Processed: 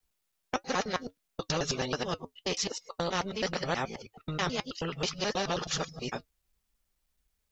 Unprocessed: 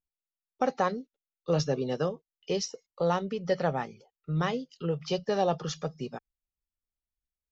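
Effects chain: local time reversal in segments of 0.107 s; flange 1.5 Hz, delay 4.1 ms, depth 1.9 ms, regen -64%; spectral compressor 2:1; gain +4.5 dB

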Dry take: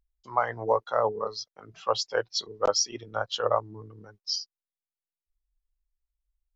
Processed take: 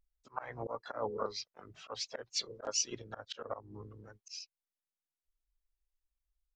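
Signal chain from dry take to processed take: vibrato 0.49 Hz 76 cents; harmoniser -12 st -16 dB, -4 st -17 dB, +3 st -10 dB; auto swell 0.221 s; gain -5.5 dB

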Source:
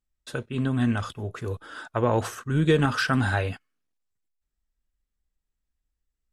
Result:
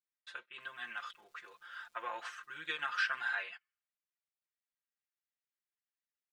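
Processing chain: ladder band-pass 2200 Hz, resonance 20%; 0.59–3.42 crackle 570/s -67 dBFS; comb 5.7 ms, depth 86%; gain +2.5 dB

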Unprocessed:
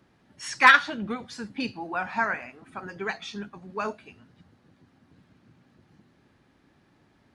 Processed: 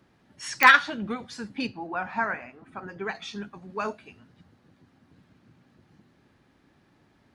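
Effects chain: 1.67–3.15 high shelf 3300 Hz -10.5 dB; pops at 0.63, -4 dBFS

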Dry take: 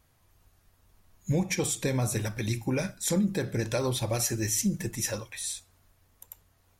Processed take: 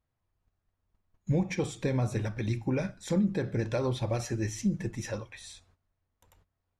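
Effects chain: gate -56 dBFS, range -15 dB; tape spacing loss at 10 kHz 20 dB

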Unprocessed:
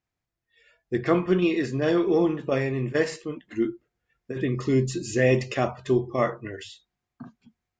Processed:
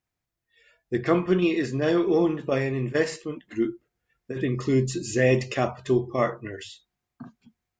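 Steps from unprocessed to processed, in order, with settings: high shelf 7800 Hz +4 dB

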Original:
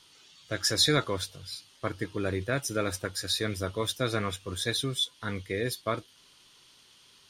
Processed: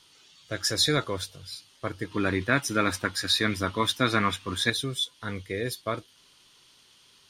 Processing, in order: 2.11–4.7 graphic EQ 250/500/1000/2000/4000 Hz +9/-4/+9/+7/+4 dB

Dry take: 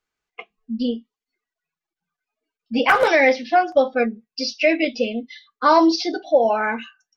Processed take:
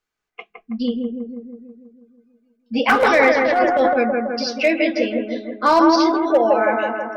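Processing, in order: overloaded stage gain 8 dB; analogue delay 0.162 s, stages 2048, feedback 62%, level -3 dB; 3.35–3.96 transient shaper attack -11 dB, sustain +8 dB

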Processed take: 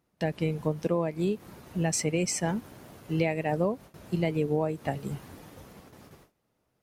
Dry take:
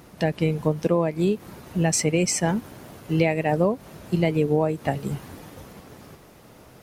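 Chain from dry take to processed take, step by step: gate with hold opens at -35 dBFS; gain -6 dB

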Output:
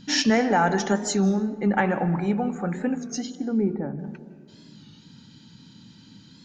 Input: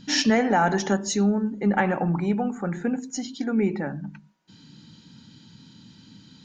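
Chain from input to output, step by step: 3.35–3.99 Bessel low-pass 710 Hz, order 2; on a send at -14.5 dB: reverb RT60 1.6 s, pre-delay 0.152 s; on the sum: record warp 33 1/3 rpm, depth 100 cents

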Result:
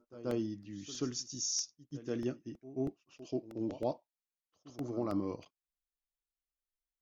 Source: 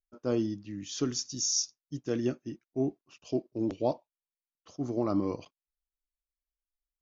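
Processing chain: pre-echo 0.133 s -15.5 dB; crackling interface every 0.32 s, samples 64, repeat, from 0.31; gain -6 dB

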